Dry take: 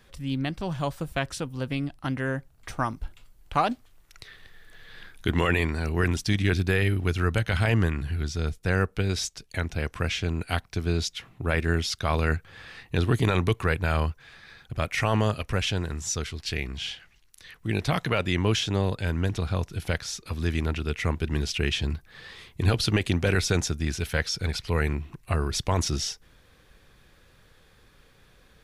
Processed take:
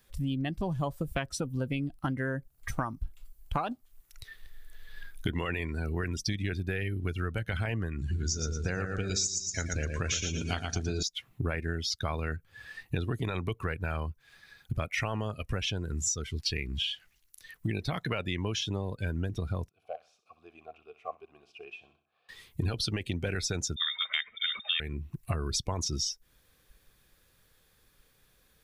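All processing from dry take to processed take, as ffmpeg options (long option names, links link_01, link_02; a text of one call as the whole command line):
ffmpeg -i in.wav -filter_complex "[0:a]asettb=1/sr,asplit=3[link_01][link_02][link_03];[link_01]atrim=end=7.994[link_04];[link_02]atrim=start=7.99:end=11.03,asetpts=PTS-STARTPTS,afade=type=in:duration=0.004:curve=qsin,afade=type=out:start_time=3.036:duration=0.004:curve=qsin,lowpass=frequency=6800:width_type=q:width=4.9,asplit=2[link_05][link_06];[link_06]adelay=38,volume=-12.5dB[link_07];[link_05][link_07]amix=inputs=2:normalize=0,atrim=end_sample=134064,aecho=1:1:115|230|345|460|575|690:0.562|0.287|0.146|0.0746|0.038|0.0194,atrim=end_sample=134064[link_08];[link_03]atrim=start=11.026[link_09];[link_04][link_08]acrossfade=duration=0.004:curve1=hsin:curve2=qsin[link_10];[link_10][link_09]acrossfade=duration=0.004:curve1=qsin:curve2=hsin,asettb=1/sr,asplit=3[link_11][link_12][link_13];[link_11]atrim=end=19.694[link_14];[link_12]atrim=start=19.69:end=22.29,asetpts=PTS-STARTPTS,afade=type=in:duration=0.004:curve=qsin,afade=type=out:start_time=2.596:duration=0.004:curve=qsin,asplit=3[link_15][link_16][link_17];[link_15]bandpass=frequency=730:width_type=q:width=8,volume=0dB[link_18];[link_16]bandpass=frequency=1090:width_type=q:width=8,volume=-6dB[link_19];[link_17]bandpass=frequency=2440:width_type=q:width=8,volume=-9dB[link_20];[link_18][link_19][link_20]amix=inputs=3:normalize=0,highshelf=frequency=2500:gain=-6,aecho=1:1:63|126|189|252:0.282|0.118|0.0497|0.0209,atrim=end_sample=114660[link_21];[link_13]atrim=start=22.286[link_22];[link_14][link_21]acrossfade=duration=0.004:curve1=hsin:curve2=qsin[link_23];[link_23][link_22]acrossfade=duration=0.004:curve1=qsin:curve2=hsin,asettb=1/sr,asplit=3[link_24][link_25][link_26];[link_24]atrim=end=23.764[link_27];[link_25]atrim=start=23.76:end=24.8,asetpts=PTS-STARTPTS,afade=type=in:duration=0.004:curve=qsin,afade=type=out:start_time=1.036:duration=0.004:curve=qsin,equalizer=frequency=1200:width_type=o:width=2.8:gain=11,lowpass=frequency=3100:width_type=q:width=0.5098,lowpass=frequency=3100:width_type=q:width=0.6013,lowpass=frequency=3100:width_type=q:width=0.9,lowpass=frequency=3100:width_type=q:width=2.563,afreqshift=-3700[link_28];[link_26]atrim=start=24.796[link_29];[link_27][link_28]acrossfade=duration=0.004:curve1=hsin:curve2=qsin[link_30];[link_30][link_29]acrossfade=duration=0.004:curve1=qsin:curve2=hsin,afftdn=noise_reduction=18:noise_floor=-33,aemphasis=mode=production:type=50fm,acompressor=threshold=-36dB:ratio=10,volume=7.5dB" out.wav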